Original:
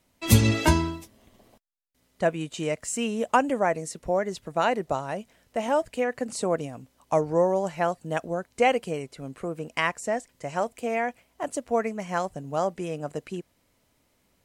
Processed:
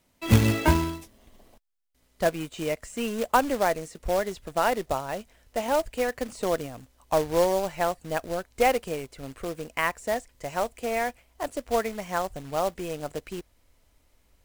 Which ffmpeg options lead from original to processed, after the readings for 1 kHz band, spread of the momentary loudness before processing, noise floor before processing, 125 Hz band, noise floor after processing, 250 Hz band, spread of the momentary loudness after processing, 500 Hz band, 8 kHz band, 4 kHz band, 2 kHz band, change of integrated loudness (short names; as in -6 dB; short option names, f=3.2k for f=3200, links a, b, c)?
0.0 dB, 12 LU, -69 dBFS, -1.0 dB, -67 dBFS, -1.5 dB, 12 LU, -0.5 dB, -3.0 dB, -1.0 dB, -0.5 dB, -0.5 dB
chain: -filter_complex "[0:a]acrossover=split=2800[a][b];[b]acompressor=threshold=-43dB:ratio=4:attack=1:release=60[c];[a][c]amix=inputs=2:normalize=0,acrusher=bits=3:mode=log:mix=0:aa=0.000001,asubboost=boost=8:cutoff=54"